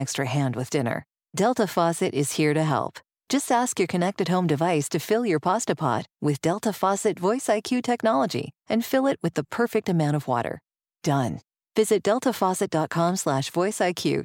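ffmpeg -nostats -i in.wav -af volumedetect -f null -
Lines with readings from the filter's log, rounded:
mean_volume: -24.3 dB
max_volume: -8.9 dB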